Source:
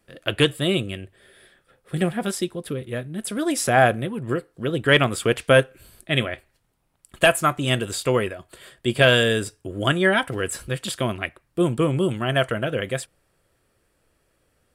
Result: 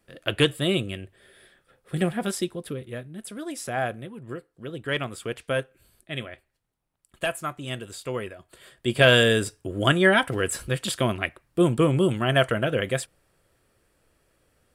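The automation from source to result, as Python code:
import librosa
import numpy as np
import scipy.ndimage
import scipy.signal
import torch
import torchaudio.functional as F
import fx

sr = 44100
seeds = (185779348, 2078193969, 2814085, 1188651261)

y = fx.gain(x, sr, db=fx.line((2.49, -2.0), (3.48, -11.0), (8.02, -11.0), (9.19, 0.5)))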